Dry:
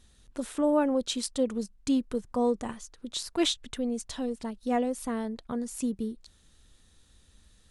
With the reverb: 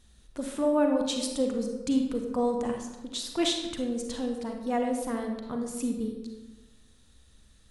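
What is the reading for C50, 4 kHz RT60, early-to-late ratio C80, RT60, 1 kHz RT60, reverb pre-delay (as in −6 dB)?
4.0 dB, 0.70 s, 6.5 dB, 1.2 s, 1.1 s, 35 ms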